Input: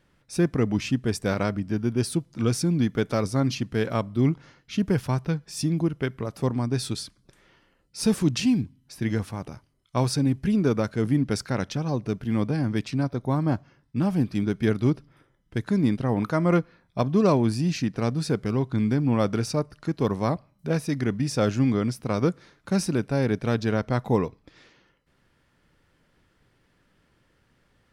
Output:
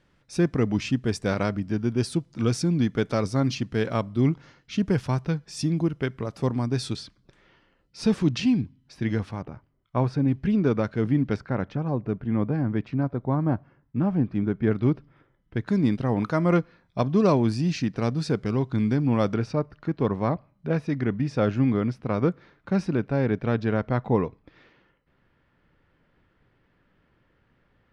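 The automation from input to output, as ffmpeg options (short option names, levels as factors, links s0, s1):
-af "asetnsamples=n=441:p=0,asendcmd='6.96 lowpass f 4400;9.42 lowpass f 1900;10.28 lowpass f 3500;11.36 lowpass f 1700;14.71 lowpass f 2800;15.68 lowpass f 6300;19.34 lowpass f 2700',lowpass=7300"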